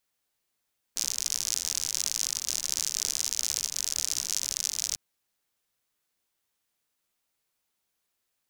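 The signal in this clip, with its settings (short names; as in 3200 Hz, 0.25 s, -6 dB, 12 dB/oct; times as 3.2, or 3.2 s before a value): rain from filtered ticks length 4.00 s, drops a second 76, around 6000 Hz, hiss -22.5 dB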